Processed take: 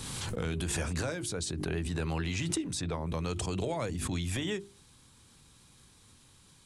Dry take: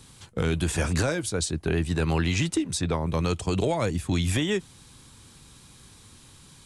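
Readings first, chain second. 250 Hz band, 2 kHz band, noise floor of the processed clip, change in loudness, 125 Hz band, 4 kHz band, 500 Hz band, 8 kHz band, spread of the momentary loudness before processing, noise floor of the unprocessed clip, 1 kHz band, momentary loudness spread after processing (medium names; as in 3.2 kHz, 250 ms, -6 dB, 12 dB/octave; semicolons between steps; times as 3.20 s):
-8.0 dB, -7.5 dB, -60 dBFS, -7.5 dB, -7.5 dB, -6.0 dB, -8.0 dB, -4.5 dB, 3 LU, -52 dBFS, -7.5 dB, 3 LU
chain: hum notches 50/100/150/200/250/300/350/400 Hz; swell ahead of each attack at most 21 dB/s; trim -8.5 dB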